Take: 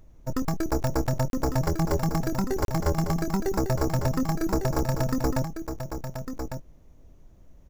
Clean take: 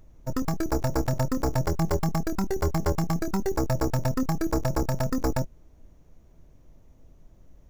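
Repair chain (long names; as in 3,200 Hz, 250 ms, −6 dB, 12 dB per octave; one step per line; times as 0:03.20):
click removal
repair the gap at 0:01.30/0:02.65, 32 ms
echo removal 1,152 ms −8 dB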